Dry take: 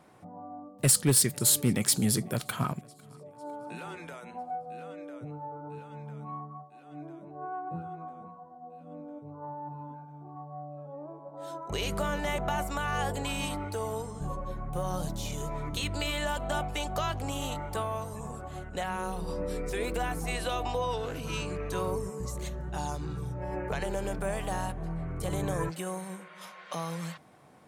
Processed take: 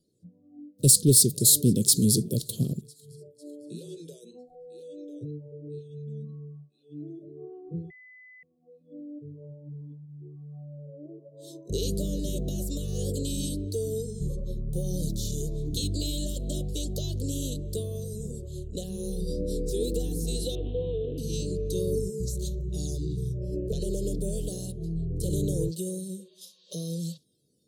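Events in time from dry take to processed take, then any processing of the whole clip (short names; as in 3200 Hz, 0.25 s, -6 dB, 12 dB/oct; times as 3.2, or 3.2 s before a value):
7.9–8.43 bleep 2010 Hz -9.5 dBFS
20.55–21.18 CVSD 16 kbps
24.48–24.94 HPF 230 Hz -> 58 Hz 6 dB/oct
whole clip: spectral noise reduction 17 dB; elliptic band-stop 460–3900 Hz, stop band 40 dB; gain +5.5 dB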